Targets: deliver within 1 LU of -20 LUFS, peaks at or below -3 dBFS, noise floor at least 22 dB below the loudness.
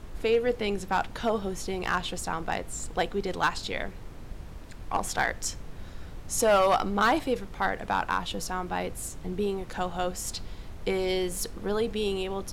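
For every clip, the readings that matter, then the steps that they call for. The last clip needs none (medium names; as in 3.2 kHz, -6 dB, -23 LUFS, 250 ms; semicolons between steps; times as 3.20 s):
clipped samples 0.5%; clipping level -16.5 dBFS; noise floor -43 dBFS; noise floor target -51 dBFS; loudness -29.0 LUFS; peak level -16.5 dBFS; loudness target -20.0 LUFS
-> clip repair -16.5 dBFS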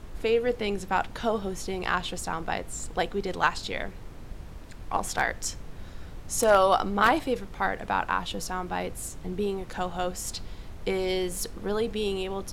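clipped samples 0.0%; noise floor -43 dBFS; noise floor target -51 dBFS
-> noise print and reduce 8 dB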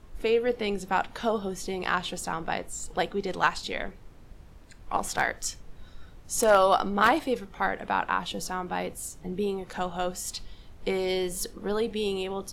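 noise floor -49 dBFS; noise floor target -51 dBFS
-> noise print and reduce 6 dB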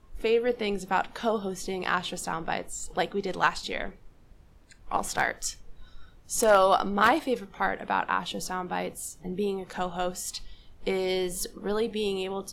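noise floor -55 dBFS; loudness -28.5 LUFS; peak level -7.5 dBFS; loudness target -20.0 LUFS
-> trim +8.5 dB; peak limiter -3 dBFS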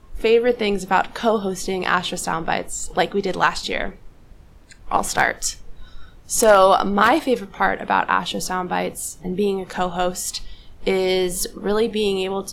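loudness -20.5 LUFS; peak level -3.0 dBFS; noise floor -46 dBFS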